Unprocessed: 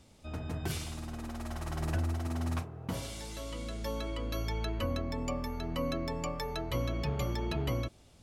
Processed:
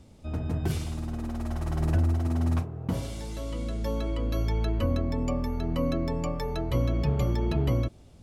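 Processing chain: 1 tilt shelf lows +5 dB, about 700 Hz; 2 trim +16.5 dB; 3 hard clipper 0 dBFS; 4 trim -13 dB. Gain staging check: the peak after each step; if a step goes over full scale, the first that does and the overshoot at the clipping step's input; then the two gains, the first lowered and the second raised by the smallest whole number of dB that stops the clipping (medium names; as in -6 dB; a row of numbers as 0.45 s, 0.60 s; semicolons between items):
-18.5 dBFS, -2.0 dBFS, -2.0 dBFS, -15.0 dBFS; nothing clips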